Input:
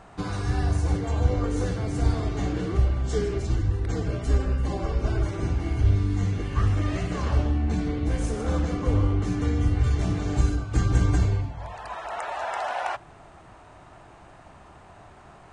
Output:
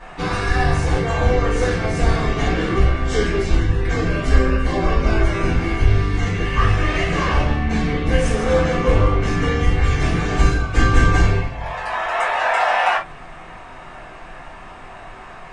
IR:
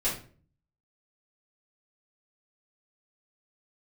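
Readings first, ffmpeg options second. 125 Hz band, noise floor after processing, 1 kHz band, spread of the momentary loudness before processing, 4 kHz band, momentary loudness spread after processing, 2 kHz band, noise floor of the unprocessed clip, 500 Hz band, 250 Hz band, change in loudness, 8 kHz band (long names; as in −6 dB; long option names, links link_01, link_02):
+4.0 dB, −38 dBFS, +12.0 dB, 7 LU, +12.5 dB, 21 LU, +16.0 dB, −49 dBFS, +10.5 dB, +6.0 dB, +7.0 dB, +7.0 dB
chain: -filter_complex "[0:a]equalizer=frequency=2000:width_type=o:width=2.2:gain=10[link_01];[1:a]atrim=start_sample=2205,atrim=end_sample=3528[link_02];[link_01][link_02]afir=irnorm=-1:irlink=0,volume=-1dB"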